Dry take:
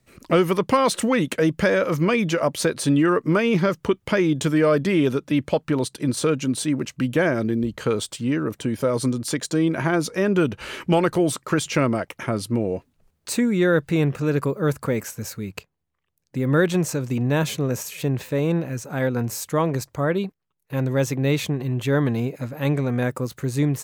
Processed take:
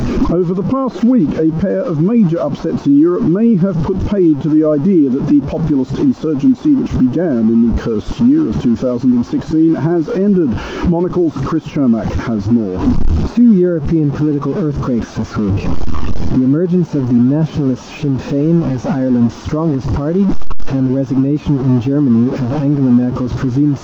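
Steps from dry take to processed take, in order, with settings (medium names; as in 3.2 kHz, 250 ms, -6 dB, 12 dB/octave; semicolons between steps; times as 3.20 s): one-bit delta coder 32 kbps, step -22 dBFS; de-esser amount 95%; graphic EQ 125/250/500/2000/4000 Hz -6/+4/-5/-7/-6 dB; compression, threshold -23 dBFS, peak gain reduction 8 dB; crackle 600 per s -46 dBFS; loudness maximiser +23 dB; spectral contrast expander 1.5:1; trim -1 dB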